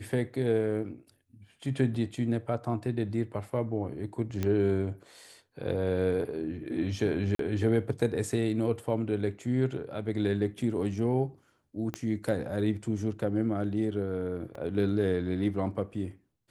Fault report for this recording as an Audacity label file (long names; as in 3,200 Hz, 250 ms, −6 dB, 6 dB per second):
4.430000	4.430000	click −17 dBFS
7.350000	7.390000	drop-out 43 ms
11.940000	11.940000	click −19 dBFS
14.550000	14.550000	drop-out 3.3 ms